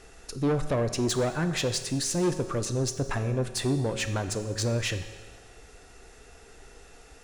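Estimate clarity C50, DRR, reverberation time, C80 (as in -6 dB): 10.0 dB, 8.0 dB, 1.4 s, 11.5 dB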